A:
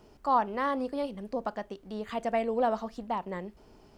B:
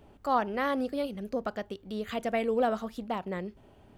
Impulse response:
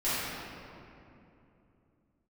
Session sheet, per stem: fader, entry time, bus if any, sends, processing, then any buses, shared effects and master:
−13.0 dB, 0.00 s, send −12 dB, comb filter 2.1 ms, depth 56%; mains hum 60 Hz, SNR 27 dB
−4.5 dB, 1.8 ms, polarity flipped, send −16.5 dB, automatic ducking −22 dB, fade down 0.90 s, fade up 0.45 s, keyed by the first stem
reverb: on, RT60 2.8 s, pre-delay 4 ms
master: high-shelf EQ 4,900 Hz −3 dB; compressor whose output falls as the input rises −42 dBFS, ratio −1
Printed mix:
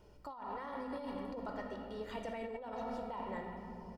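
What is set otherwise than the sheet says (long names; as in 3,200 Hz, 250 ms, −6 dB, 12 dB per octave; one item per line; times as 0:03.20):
stem B −4.5 dB → −14.0 dB
master: missing high-shelf EQ 4,900 Hz −3 dB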